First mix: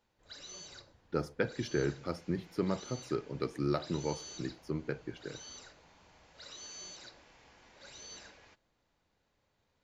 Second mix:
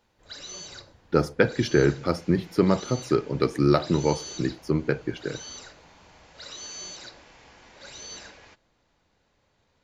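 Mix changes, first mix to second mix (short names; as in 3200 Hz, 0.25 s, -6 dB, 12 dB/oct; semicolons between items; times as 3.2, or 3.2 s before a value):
speech +12.0 dB; background +8.5 dB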